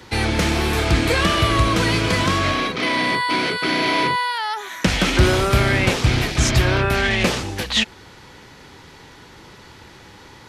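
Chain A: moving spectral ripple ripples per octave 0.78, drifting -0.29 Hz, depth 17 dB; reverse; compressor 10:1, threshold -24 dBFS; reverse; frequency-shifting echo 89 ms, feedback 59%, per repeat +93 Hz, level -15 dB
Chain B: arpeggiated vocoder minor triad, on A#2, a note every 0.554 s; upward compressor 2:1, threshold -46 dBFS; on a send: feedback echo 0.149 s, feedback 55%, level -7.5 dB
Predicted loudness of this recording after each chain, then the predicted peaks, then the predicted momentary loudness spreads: -26.5, -21.0 LUFS; -13.0, -3.5 dBFS; 14, 9 LU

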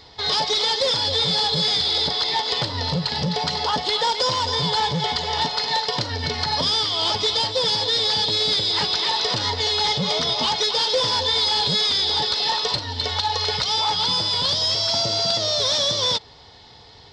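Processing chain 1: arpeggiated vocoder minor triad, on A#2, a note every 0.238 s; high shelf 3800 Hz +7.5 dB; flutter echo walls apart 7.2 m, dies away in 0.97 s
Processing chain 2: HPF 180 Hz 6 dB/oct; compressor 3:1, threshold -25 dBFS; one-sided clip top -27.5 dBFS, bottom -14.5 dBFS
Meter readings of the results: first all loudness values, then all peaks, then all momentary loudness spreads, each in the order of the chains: -18.0, -26.0 LUFS; -2.5, -15.0 dBFS; 5, 3 LU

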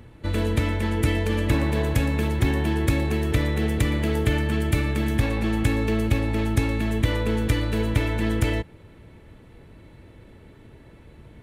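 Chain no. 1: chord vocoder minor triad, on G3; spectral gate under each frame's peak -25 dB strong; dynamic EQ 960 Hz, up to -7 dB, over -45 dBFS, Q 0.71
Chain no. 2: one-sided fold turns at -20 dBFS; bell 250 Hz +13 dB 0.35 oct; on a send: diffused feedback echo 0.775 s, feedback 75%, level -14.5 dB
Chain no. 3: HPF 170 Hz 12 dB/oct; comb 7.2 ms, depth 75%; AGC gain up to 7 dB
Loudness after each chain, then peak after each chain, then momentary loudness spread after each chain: -28.0, -22.0, -19.0 LUFS; -15.0, -6.0, -3.5 dBFS; 3, 13, 3 LU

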